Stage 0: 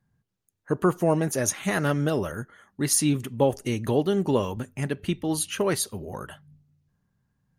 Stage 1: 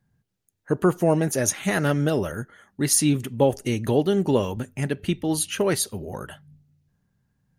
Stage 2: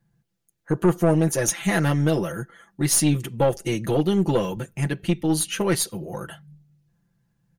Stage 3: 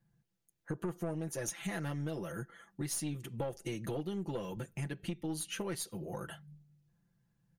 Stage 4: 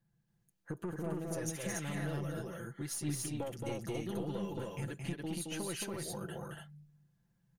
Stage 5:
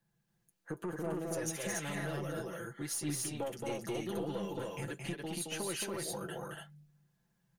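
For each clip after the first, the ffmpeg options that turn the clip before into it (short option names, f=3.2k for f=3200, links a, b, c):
-af "equalizer=f=1.1k:w=3.3:g=-4.5,volume=2.5dB"
-af "aecho=1:1:5.9:0.82,aeval=exprs='(tanh(3.55*val(0)+0.3)-tanh(0.3))/3.55':c=same"
-af "acompressor=threshold=-30dB:ratio=4,volume=-6.5dB"
-af "aecho=1:1:221.6|282.8:0.631|0.794,volume=-3dB"
-filter_complex "[0:a]flanger=delay=4.7:depth=1.8:regen=-65:speed=0.55:shape=sinusoidal,acrossover=split=280[a][b];[b]aeval=exprs='0.0316*sin(PI/2*1.58*val(0)/0.0316)':c=same[c];[a][c]amix=inputs=2:normalize=0"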